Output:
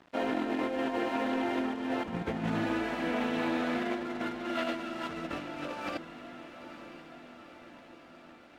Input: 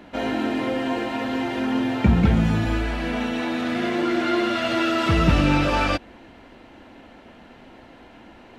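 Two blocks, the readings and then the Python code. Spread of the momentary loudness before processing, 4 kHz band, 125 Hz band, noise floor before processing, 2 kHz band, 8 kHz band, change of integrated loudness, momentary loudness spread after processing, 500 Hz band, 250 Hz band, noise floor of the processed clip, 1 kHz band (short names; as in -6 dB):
7 LU, -12.0 dB, -20.0 dB, -48 dBFS, -9.5 dB, -12.0 dB, -11.0 dB, 19 LU, -8.0 dB, -10.5 dB, -54 dBFS, -9.0 dB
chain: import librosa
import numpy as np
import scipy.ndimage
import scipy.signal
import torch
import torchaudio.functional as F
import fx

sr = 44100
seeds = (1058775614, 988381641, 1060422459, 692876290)

y = scipy.signal.sosfilt(scipy.signal.butter(2, 250.0, 'highpass', fs=sr, output='sos'), x)
y = fx.high_shelf(y, sr, hz=3100.0, db=-9.5)
y = fx.over_compress(y, sr, threshold_db=-27.0, ratio=-0.5)
y = np.sign(y) * np.maximum(np.abs(y) - 10.0 ** (-43.5 / 20.0), 0.0)
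y = fx.echo_diffused(y, sr, ms=919, feedback_pct=62, wet_db=-12)
y = fx.doppler_dist(y, sr, depth_ms=0.13)
y = y * 10.0 ** (-4.5 / 20.0)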